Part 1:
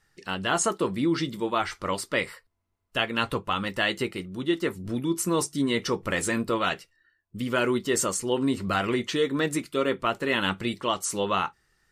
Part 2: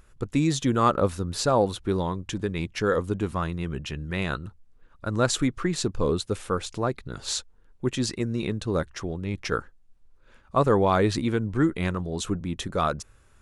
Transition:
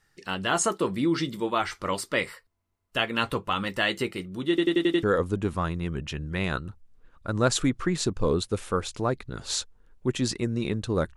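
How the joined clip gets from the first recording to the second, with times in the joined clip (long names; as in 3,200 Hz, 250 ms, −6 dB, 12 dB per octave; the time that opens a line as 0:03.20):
part 1
0:04.49: stutter in place 0.09 s, 6 plays
0:05.03: continue with part 2 from 0:02.81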